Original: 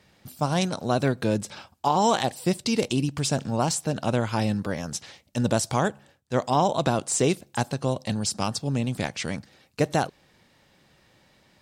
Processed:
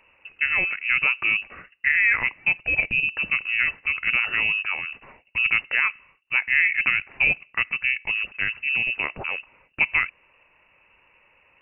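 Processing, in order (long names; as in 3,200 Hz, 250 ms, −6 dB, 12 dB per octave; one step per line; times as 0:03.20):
voice inversion scrambler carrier 2,800 Hz
level +1.5 dB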